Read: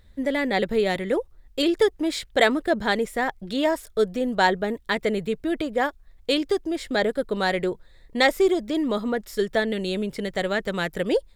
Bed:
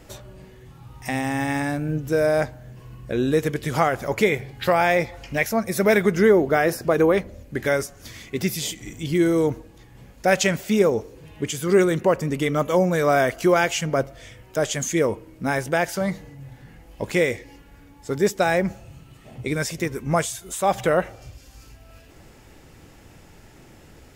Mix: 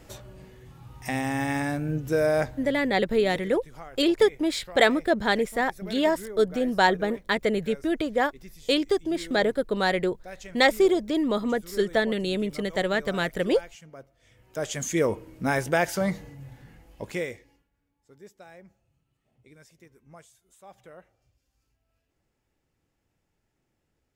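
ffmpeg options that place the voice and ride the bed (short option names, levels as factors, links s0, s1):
-filter_complex "[0:a]adelay=2400,volume=0.944[s0];[1:a]volume=8.91,afade=t=out:st=2.63:d=0.48:silence=0.0944061,afade=t=in:st=14.19:d=0.98:silence=0.0794328,afade=t=out:st=16.2:d=1.49:silence=0.0446684[s1];[s0][s1]amix=inputs=2:normalize=0"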